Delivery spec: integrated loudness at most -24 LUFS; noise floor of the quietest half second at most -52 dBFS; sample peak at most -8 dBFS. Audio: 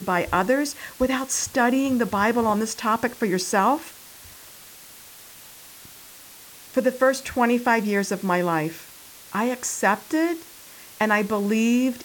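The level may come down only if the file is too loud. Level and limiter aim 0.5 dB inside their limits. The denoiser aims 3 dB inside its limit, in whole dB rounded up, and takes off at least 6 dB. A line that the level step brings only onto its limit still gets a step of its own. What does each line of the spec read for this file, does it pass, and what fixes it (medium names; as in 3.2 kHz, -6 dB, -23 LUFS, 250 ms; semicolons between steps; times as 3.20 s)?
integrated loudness -23.0 LUFS: fail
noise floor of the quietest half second -45 dBFS: fail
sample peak -6.5 dBFS: fail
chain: noise reduction 9 dB, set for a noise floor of -45 dBFS; trim -1.5 dB; peak limiter -8.5 dBFS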